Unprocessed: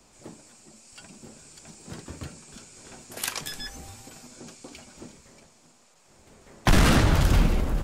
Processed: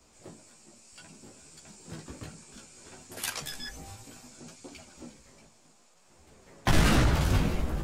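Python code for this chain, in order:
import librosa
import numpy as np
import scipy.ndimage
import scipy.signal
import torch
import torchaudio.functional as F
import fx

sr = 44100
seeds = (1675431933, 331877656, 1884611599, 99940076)

p1 = np.clip(10.0 ** (17.5 / 20.0) * x, -1.0, 1.0) / 10.0 ** (17.5 / 20.0)
p2 = x + (p1 * librosa.db_to_amplitude(-10.5))
p3 = fx.chorus_voices(p2, sr, voices=2, hz=0.64, base_ms=15, depth_ms=4.2, mix_pct=45)
y = p3 * librosa.db_to_amplitude(-2.5)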